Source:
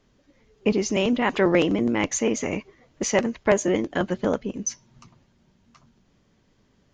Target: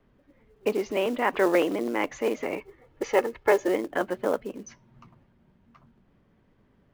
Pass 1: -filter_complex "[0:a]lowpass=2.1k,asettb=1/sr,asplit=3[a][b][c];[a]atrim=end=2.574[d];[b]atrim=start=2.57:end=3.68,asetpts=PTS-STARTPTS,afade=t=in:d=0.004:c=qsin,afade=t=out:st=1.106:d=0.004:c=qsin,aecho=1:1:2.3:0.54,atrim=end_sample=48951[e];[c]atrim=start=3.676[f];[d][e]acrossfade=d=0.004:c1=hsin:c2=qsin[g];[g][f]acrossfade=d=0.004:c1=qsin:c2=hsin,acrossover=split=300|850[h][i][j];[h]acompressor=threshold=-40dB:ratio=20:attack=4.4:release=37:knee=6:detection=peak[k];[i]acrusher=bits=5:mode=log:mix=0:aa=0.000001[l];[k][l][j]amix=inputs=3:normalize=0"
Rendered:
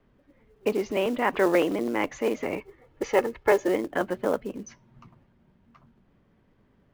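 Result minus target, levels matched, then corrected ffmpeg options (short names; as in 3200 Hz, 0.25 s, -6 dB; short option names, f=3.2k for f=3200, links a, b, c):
compressor: peak gain reduction -8.5 dB
-filter_complex "[0:a]lowpass=2.1k,asettb=1/sr,asplit=3[a][b][c];[a]atrim=end=2.574[d];[b]atrim=start=2.57:end=3.68,asetpts=PTS-STARTPTS,afade=t=in:d=0.004:c=qsin,afade=t=out:st=1.106:d=0.004:c=qsin,aecho=1:1:2.3:0.54,atrim=end_sample=48951[e];[c]atrim=start=3.676[f];[d][e]acrossfade=d=0.004:c1=hsin:c2=qsin[g];[g][f]acrossfade=d=0.004:c1=qsin:c2=hsin,acrossover=split=300|850[h][i][j];[h]acompressor=threshold=-49dB:ratio=20:attack=4.4:release=37:knee=6:detection=peak[k];[i]acrusher=bits=5:mode=log:mix=0:aa=0.000001[l];[k][l][j]amix=inputs=3:normalize=0"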